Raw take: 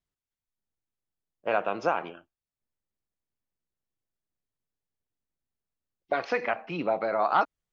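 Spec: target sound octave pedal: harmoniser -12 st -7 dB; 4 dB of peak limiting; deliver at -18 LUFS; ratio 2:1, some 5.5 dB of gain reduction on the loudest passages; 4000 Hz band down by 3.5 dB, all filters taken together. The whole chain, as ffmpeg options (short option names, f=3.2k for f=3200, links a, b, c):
-filter_complex "[0:a]equalizer=f=4k:t=o:g=-5,acompressor=threshold=-28dB:ratio=2,alimiter=limit=-20dB:level=0:latency=1,asplit=2[a][b];[b]asetrate=22050,aresample=44100,atempo=2,volume=-7dB[c];[a][c]amix=inputs=2:normalize=0,volume=15dB"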